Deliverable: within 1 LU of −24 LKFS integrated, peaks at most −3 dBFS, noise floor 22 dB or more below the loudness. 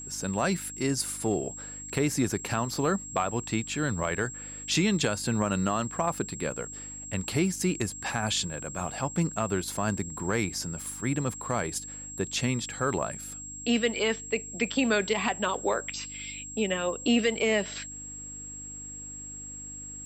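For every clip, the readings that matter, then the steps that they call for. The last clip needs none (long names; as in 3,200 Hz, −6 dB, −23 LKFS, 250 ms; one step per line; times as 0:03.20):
mains hum 50 Hz; hum harmonics up to 300 Hz; level of the hum −48 dBFS; interfering tone 7,600 Hz; level of the tone −39 dBFS; integrated loudness −29.5 LKFS; sample peak −14.0 dBFS; target loudness −24.0 LKFS
→ hum removal 50 Hz, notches 6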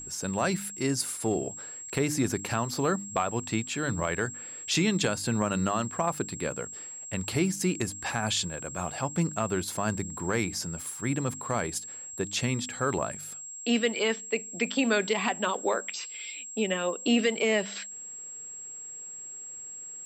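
mains hum none found; interfering tone 7,600 Hz; level of the tone −39 dBFS
→ notch filter 7,600 Hz, Q 30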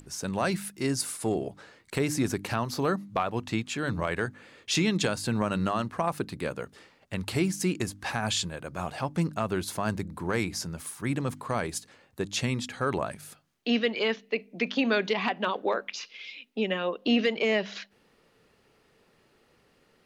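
interfering tone none found; integrated loudness −29.5 LKFS; sample peak −14.0 dBFS; target loudness −24.0 LKFS
→ level +5.5 dB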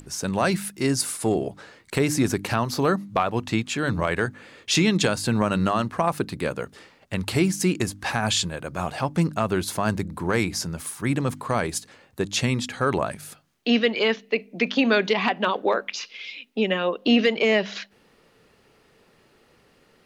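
integrated loudness −24.0 LKFS; sample peak −8.5 dBFS; background noise floor −60 dBFS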